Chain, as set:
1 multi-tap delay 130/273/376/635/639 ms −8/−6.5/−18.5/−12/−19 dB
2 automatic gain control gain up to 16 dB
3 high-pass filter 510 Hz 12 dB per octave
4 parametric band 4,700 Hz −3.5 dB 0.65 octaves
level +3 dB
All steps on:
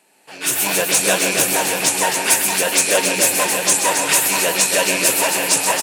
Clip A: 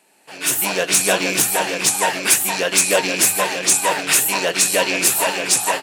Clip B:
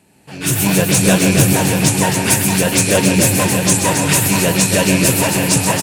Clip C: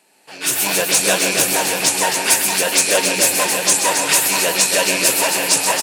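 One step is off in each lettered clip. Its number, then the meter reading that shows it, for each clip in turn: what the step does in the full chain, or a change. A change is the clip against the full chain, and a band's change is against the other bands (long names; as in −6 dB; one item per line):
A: 1, change in momentary loudness spread +1 LU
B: 3, 125 Hz band +20.5 dB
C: 4, 4 kHz band +2.0 dB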